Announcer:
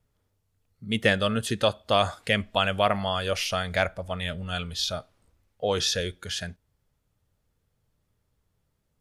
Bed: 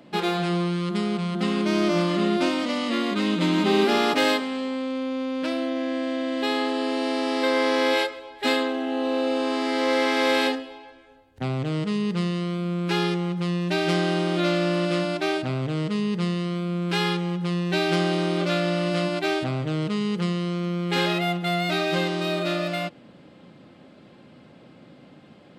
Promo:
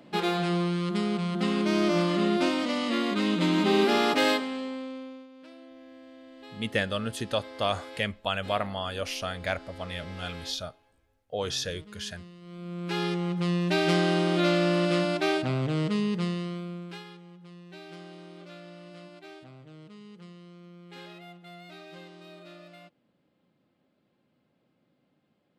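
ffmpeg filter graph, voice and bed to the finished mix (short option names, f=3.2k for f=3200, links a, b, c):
-filter_complex "[0:a]adelay=5700,volume=-5.5dB[a];[1:a]volume=19dB,afade=t=out:st=4.3:d=0.98:silence=0.1,afade=t=in:st=12.41:d=1.09:silence=0.0841395,afade=t=out:st=15.89:d=1.15:silence=0.0841395[b];[a][b]amix=inputs=2:normalize=0"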